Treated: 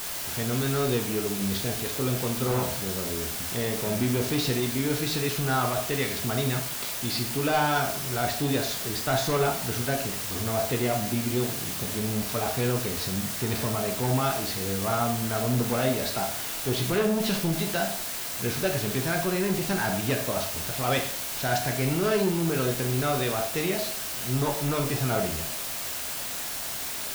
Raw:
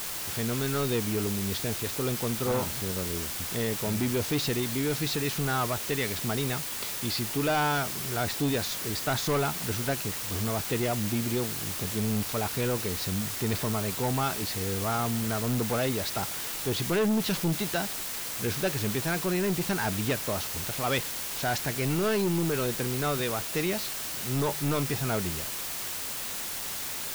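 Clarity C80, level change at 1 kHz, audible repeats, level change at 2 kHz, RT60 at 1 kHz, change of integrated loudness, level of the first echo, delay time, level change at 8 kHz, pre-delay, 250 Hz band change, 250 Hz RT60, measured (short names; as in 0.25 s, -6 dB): 11.0 dB, +3.0 dB, none, +2.0 dB, 0.50 s, +2.0 dB, none, none, +1.5 dB, 5 ms, +1.5 dB, 0.55 s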